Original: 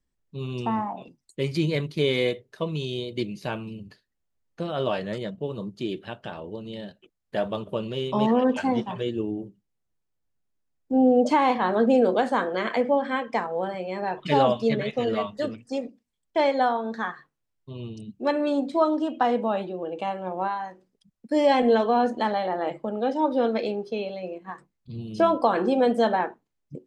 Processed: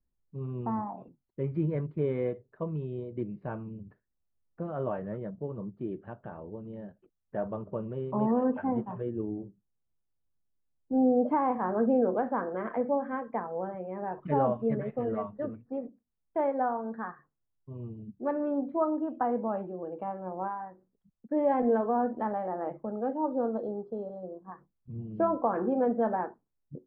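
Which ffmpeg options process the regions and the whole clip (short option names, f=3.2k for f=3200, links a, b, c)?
-filter_complex "[0:a]asettb=1/sr,asplit=3[a][b][c];[a]atrim=end=23.174[d];[b]atrim=start=23.17:end=24.52,asetpts=PTS-STARTPTS,afade=t=in:d=0.004:c=qsin,afade=t=out:st=1.346:d=0.004:c=qsin,asuperstop=centerf=2300:order=4:qfactor=0.9,aemphasis=mode=production:type=75fm[e];[c]atrim=start=24.516[f];[d][e]acrossfade=d=0.004:c1=hsin:c2=qsin[g];[g][f]acrossfade=d=0.004:c1=qsin:c2=hsin,lowpass=f=1.5k:w=0.5412,lowpass=f=1.5k:w=1.3066,lowshelf=f=180:g=6,volume=-7dB"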